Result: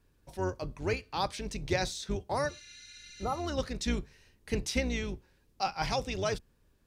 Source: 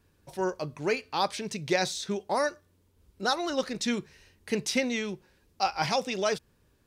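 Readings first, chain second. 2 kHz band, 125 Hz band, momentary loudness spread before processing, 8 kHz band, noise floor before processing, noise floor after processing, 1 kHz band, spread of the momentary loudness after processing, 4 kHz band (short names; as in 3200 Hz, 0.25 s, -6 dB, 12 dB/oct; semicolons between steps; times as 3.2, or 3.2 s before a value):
-5.0 dB, +4.0 dB, 6 LU, -4.5 dB, -67 dBFS, -68 dBFS, -4.5 dB, 14 LU, -5.0 dB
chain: octaver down 2 oct, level +2 dB; spectral repair 2.51–3.4, 1400–10000 Hz after; gain -4.5 dB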